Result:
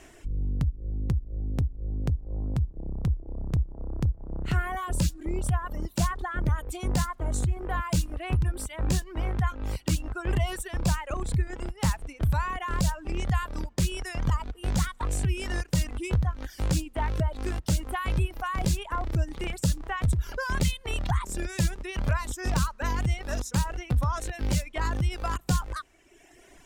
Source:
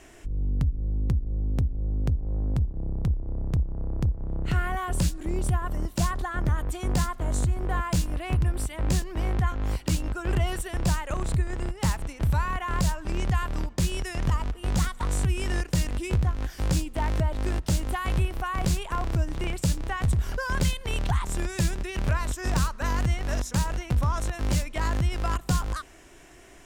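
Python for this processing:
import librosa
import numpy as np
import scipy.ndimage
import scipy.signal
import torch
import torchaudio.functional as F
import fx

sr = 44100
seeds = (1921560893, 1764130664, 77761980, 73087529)

y = fx.dereverb_blind(x, sr, rt60_s=1.3)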